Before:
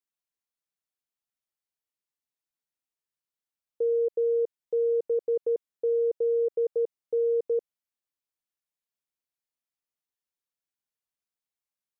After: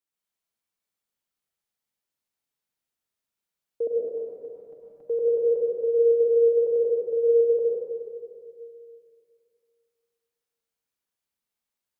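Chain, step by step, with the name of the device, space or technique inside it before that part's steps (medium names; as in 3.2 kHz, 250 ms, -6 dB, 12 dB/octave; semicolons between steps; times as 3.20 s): 3.87–5.03 s: elliptic band-stop 290–620 Hz; tunnel (flutter echo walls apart 7.1 m, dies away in 0.21 s; reverberation RT60 2.2 s, pre-delay 96 ms, DRR -3.5 dB)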